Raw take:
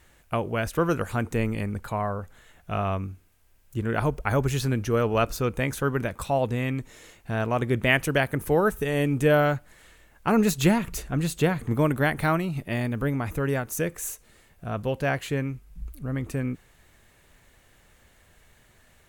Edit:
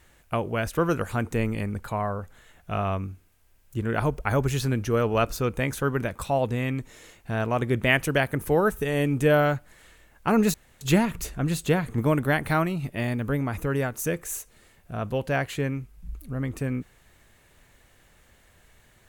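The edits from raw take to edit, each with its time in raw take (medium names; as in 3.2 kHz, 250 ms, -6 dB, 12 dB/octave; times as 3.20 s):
10.54 s: insert room tone 0.27 s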